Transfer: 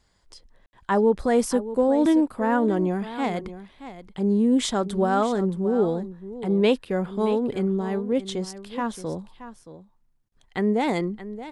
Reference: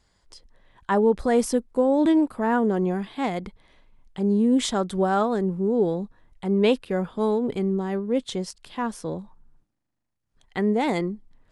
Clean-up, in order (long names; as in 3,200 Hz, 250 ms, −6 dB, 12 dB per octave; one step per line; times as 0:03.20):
ambience match 0:00.66–0:00.73
repair the gap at 0:10.29, 28 ms
echo removal 624 ms −13.5 dB